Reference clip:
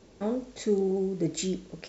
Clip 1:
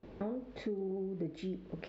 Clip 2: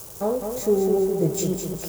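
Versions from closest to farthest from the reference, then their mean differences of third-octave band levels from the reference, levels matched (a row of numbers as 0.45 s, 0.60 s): 1, 2; 5.0 dB, 9.0 dB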